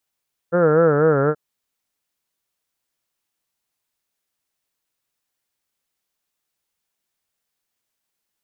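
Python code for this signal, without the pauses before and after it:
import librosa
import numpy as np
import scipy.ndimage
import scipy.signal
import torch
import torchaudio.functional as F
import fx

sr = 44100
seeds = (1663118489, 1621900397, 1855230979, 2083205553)

y = fx.vowel(sr, seeds[0], length_s=0.83, word='heard', hz=168.0, glide_st=-3.0, vibrato_hz=4.1, vibrato_st=1.2)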